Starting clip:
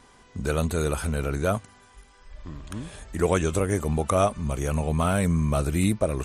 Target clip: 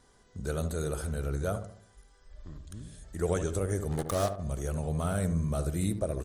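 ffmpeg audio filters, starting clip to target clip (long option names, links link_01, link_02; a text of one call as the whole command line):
ffmpeg -i in.wav -filter_complex "[0:a]asettb=1/sr,asplit=3[link_01][link_02][link_03];[link_01]atrim=end=2.584[link_04];[link_02]atrim=start=2.58:end=3.04,asetpts=PTS-STARTPTS,afade=type=in:duration=0.004:curve=qsin,afade=type=out:start_time=0.456:duration=0.004:curve=qsin,equalizer=frequency=810:width=0.56:gain=-10.5[link_05];[link_03]atrim=start=3.036[link_06];[link_04][link_05]acrossfade=duration=0.004:curve1=hsin:curve2=qsin[link_07];[link_07][link_06]acrossfade=duration=0.004:curve1=qsin:curve2=hsin,asplit=3[link_08][link_09][link_10];[link_08]afade=type=out:start_time=3.9:duration=0.02[link_11];[link_09]acrusher=bits=3:mix=0:aa=0.5,afade=type=in:start_time=3.9:duration=0.02,afade=type=out:start_time=4.38:duration=0.02[link_12];[link_10]afade=type=in:start_time=4.38:duration=0.02[link_13];[link_11][link_12][link_13]amix=inputs=3:normalize=0,equalizer=frequency=250:width_type=o:width=0.67:gain=-5,equalizer=frequency=1000:width_type=o:width=0.67:gain=-7,equalizer=frequency=2500:width_type=o:width=0.67:gain=-10,asplit=2[link_14][link_15];[link_15]adelay=72,lowpass=frequency=1200:poles=1,volume=-8dB,asplit=2[link_16][link_17];[link_17]adelay=72,lowpass=frequency=1200:poles=1,volume=0.48,asplit=2[link_18][link_19];[link_19]adelay=72,lowpass=frequency=1200:poles=1,volume=0.48,asplit=2[link_20][link_21];[link_21]adelay=72,lowpass=frequency=1200:poles=1,volume=0.48,asplit=2[link_22][link_23];[link_23]adelay=72,lowpass=frequency=1200:poles=1,volume=0.48,asplit=2[link_24][link_25];[link_25]adelay=72,lowpass=frequency=1200:poles=1,volume=0.48[link_26];[link_14][link_16][link_18][link_20][link_22][link_24][link_26]amix=inputs=7:normalize=0,volume=-6dB" out.wav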